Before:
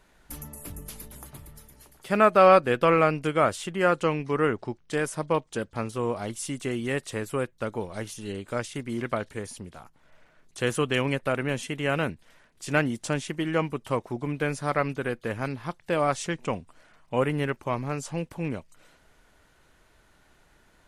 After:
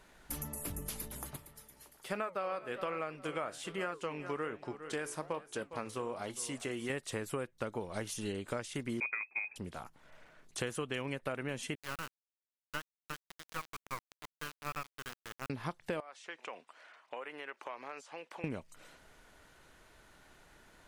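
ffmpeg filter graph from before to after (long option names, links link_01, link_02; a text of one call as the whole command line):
ffmpeg -i in.wav -filter_complex "[0:a]asettb=1/sr,asplit=3[link_01][link_02][link_03];[link_01]atrim=end=1.364[link_04];[link_02]atrim=start=1.36:end=6.9,asetpts=PTS-STARTPTS,afade=type=in:duration=0.004:curve=qsin,afade=type=out:start_time=5.536:duration=0.004:curve=qsin,lowshelf=frequency=230:gain=-8,flanger=delay=6.4:depth=8.5:regen=-76:speed=1.2:shape=sinusoidal,aecho=1:1:407|814:0.119|0.0297,atrim=end_sample=244314[link_05];[link_03]atrim=start=6.896[link_06];[link_04][link_05]acrossfade=duration=0.004:curve1=hsin:curve2=qsin[link_07];[link_07][link_06]acrossfade=duration=0.004:curve1=qsin:curve2=hsin,asettb=1/sr,asplit=3[link_08][link_09][link_10];[link_08]atrim=end=9.004[link_11];[link_09]atrim=start=9:end=9.56,asetpts=PTS-STARTPTS,afade=type=in:duration=0.004:curve=qsin,afade=type=out:start_time=0.556:duration=0.004:curve=qsin,agate=range=-11dB:threshold=-44dB:ratio=16:release=100:detection=peak,equalizer=frequency=130:width=0.9:gain=14,lowpass=frequency=2200:width_type=q:width=0.5098,lowpass=frequency=2200:width_type=q:width=0.6013,lowpass=frequency=2200:width_type=q:width=0.9,lowpass=frequency=2200:width_type=q:width=2.563,afreqshift=-2600[link_12];[link_10]atrim=start=9.556[link_13];[link_11][link_12]acrossfade=duration=0.004:curve1=hsin:curve2=qsin[link_14];[link_14][link_13]acrossfade=duration=0.004:curve1=qsin:curve2=hsin,asettb=1/sr,asplit=3[link_15][link_16][link_17];[link_15]atrim=end=11.754[link_18];[link_16]atrim=start=11.75:end=15.5,asetpts=PTS-STARTPTS,afade=type=in:duration=0.004:curve=qsin,afade=type=out:start_time=3.746:duration=0.004:curve=qsin,bandpass=frequency=1200:width_type=q:width=3.7,acrusher=bits=4:dc=4:mix=0:aa=0.000001[link_19];[link_17]atrim=start=15.496[link_20];[link_18][link_19]acrossfade=duration=0.004:curve1=hsin:curve2=qsin[link_21];[link_21][link_20]acrossfade=duration=0.004:curve1=qsin:curve2=hsin,asettb=1/sr,asplit=3[link_22][link_23][link_24];[link_22]atrim=end=16.004[link_25];[link_23]atrim=start=16:end=18.44,asetpts=PTS-STARTPTS,afade=type=in:duration=0.004:curve=qsin,afade=type=out:start_time=2.436:duration=0.004:curve=qsin,aemphasis=mode=production:type=riaa,acompressor=threshold=-37dB:ratio=12:attack=3.2:release=140:knee=1:detection=peak,highpass=430,lowpass=2700[link_26];[link_24]atrim=start=18.436[link_27];[link_25][link_26]acrossfade=duration=0.004:curve1=hsin:curve2=qsin[link_28];[link_28][link_27]acrossfade=duration=0.004:curve1=qsin:curve2=hsin,lowshelf=frequency=170:gain=-4,acompressor=threshold=-35dB:ratio=10,volume=1dB" out.wav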